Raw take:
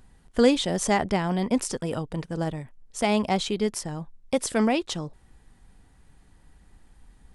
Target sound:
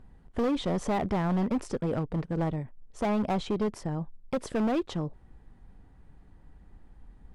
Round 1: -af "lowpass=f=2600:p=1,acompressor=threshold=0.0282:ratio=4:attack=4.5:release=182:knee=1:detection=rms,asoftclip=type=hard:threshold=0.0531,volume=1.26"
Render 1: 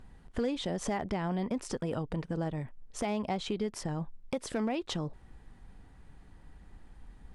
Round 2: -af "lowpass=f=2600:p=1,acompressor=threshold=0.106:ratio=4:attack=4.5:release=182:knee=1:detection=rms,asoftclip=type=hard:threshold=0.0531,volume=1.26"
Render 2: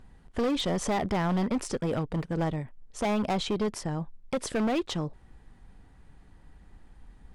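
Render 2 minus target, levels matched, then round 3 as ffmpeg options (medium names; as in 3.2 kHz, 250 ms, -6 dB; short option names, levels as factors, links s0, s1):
2 kHz band +3.0 dB
-af "lowpass=f=910:p=1,acompressor=threshold=0.106:ratio=4:attack=4.5:release=182:knee=1:detection=rms,asoftclip=type=hard:threshold=0.0531,volume=1.26"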